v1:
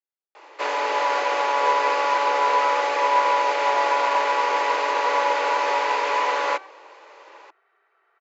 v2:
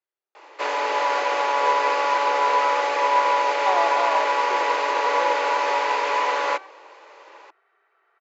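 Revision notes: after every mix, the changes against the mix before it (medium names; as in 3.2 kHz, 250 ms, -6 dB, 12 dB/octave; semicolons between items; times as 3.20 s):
speech +9.0 dB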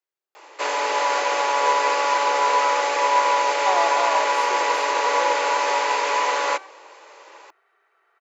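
master: remove distance through air 120 m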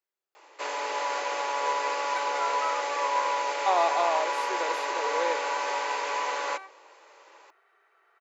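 first sound -8.5 dB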